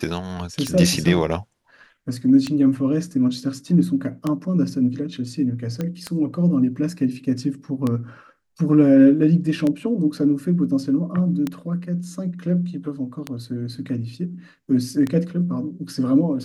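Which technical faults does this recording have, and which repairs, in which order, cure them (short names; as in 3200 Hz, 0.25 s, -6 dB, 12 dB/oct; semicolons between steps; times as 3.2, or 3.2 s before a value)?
tick 33 1/3 rpm -11 dBFS
5.81 pop -14 dBFS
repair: de-click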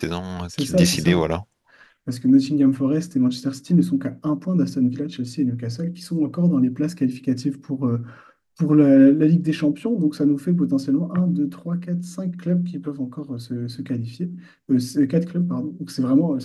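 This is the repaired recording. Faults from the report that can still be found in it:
none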